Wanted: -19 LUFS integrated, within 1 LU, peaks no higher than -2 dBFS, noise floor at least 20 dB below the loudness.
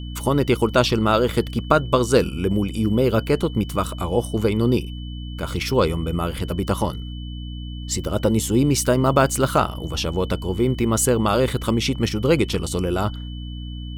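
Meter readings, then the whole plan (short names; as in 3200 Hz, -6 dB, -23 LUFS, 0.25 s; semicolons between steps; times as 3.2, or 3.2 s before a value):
hum 60 Hz; harmonics up to 300 Hz; hum level -29 dBFS; steady tone 3000 Hz; tone level -42 dBFS; loudness -21.0 LUFS; peak -1.5 dBFS; loudness target -19.0 LUFS
-> de-hum 60 Hz, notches 5; notch 3000 Hz, Q 30; gain +2 dB; limiter -2 dBFS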